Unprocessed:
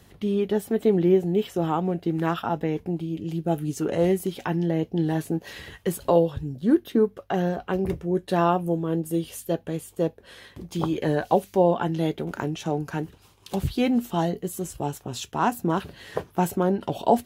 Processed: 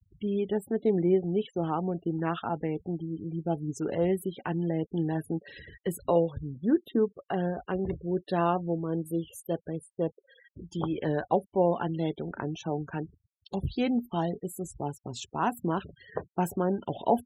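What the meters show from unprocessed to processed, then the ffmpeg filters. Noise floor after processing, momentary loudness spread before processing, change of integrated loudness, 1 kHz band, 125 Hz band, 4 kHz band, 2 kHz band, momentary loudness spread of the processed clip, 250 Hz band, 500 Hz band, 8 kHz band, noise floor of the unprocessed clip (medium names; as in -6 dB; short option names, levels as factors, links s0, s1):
-76 dBFS, 9 LU, -5.0 dB, -5.0 dB, -5.0 dB, -7.0 dB, -5.5 dB, 10 LU, -5.0 dB, -5.0 dB, -7.5 dB, -55 dBFS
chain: -af "afftfilt=real='re*gte(hypot(re,im),0.0158)':imag='im*gte(hypot(re,im),0.0158)':win_size=1024:overlap=0.75,volume=0.562"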